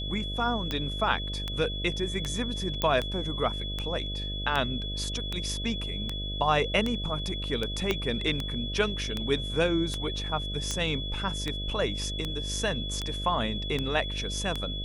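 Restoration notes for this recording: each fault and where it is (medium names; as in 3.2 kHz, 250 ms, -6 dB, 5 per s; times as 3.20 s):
buzz 50 Hz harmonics 13 -35 dBFS
tick 78 rpm -16 dBFS
whine 3.4 kHz -35 dBFS
2.82 s: pop -12 dBFS
7.91 s: pop -12 dBFS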